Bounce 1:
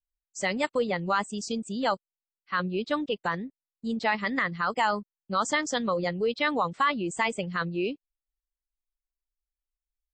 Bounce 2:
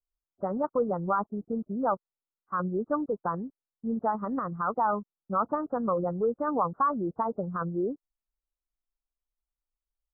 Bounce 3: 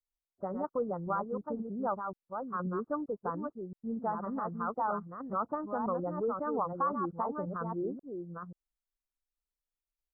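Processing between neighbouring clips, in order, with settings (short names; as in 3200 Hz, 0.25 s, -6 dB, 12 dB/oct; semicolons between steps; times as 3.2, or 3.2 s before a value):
steep low-pass 1400 Hz 72 dB/oct
reverse delay 0.533 s, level -5.5 dB; gain -6 dB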